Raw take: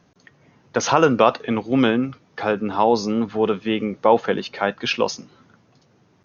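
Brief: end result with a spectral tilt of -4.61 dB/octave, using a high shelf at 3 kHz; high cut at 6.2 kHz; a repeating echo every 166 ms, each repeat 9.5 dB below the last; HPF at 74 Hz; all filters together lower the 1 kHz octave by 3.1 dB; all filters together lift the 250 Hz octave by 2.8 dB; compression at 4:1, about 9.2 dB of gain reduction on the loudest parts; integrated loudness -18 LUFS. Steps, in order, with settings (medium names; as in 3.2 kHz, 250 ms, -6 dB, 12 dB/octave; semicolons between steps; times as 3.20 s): high-pass 74 Hz; low-pass 6.2 kHz; peaking EQ 250 Hz +3.5 dB; peaking EQ 1 kHz -3.5 dB; treble shelf 3 kHz -6.5 dB; compression 4:1, threshold -22 dBFS; feedback delay 166 ms, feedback 33%, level -9.5 dB; trim +9 dB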